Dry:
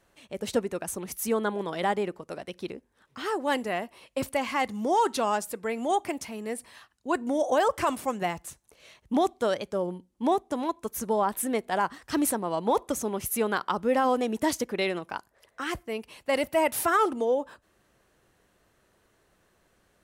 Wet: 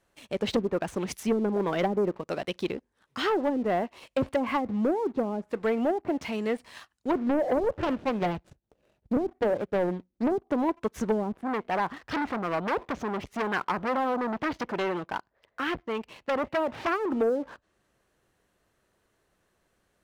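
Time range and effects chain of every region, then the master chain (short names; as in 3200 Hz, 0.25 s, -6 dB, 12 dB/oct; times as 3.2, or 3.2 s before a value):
7.11–10.32 median filter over 41 samples + Doppler distortion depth 0.66 ms
11.42–17.11 air absorption 210 m + core saturation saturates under 2400 Hz
whole clip: treble ducked by the level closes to 320 Hz, closed at -22 dBFS; dynamic EQ 3400 Hz, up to +3 dB, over -49 dBFS, Q 0.95; sample leveller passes 2; gain -1.5 dB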